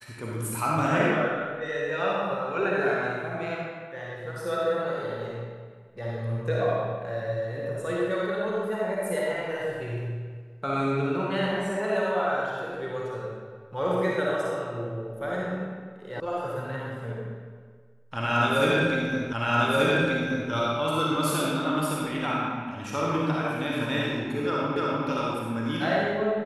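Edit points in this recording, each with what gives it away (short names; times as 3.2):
16.2 sound cut off
19.33 repeat of the last 1.18 s
24.76 repeat of the last 0.3 s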